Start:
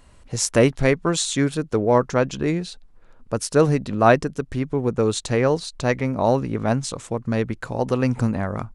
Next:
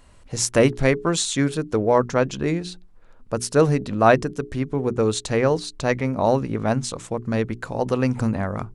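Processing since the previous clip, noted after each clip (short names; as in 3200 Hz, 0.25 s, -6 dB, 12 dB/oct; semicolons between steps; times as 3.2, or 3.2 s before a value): notches 60/120/180/240/300/360/420 Hz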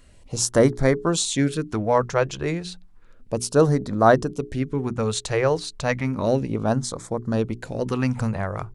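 LFO notch sine 0.32 Hz 230–2800 Hz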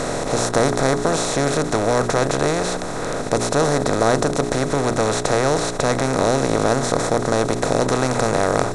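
per-bin compression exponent 0.2; gain -7 dB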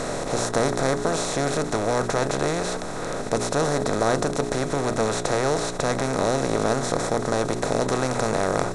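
flange 1.8 Hz, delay 4.4 ms, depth 1.5 ms, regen +83%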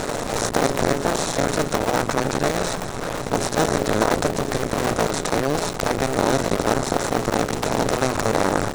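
cycle switcher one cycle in 2, muted; gain +5 dB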